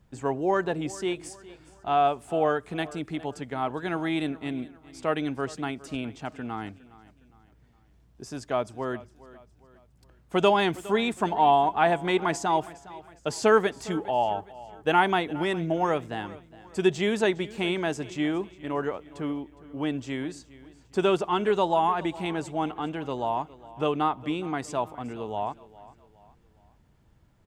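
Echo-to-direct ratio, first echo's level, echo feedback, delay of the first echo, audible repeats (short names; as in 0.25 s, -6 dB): -18.0 dB, -19.0 dB, 41%, 0.411 s, 3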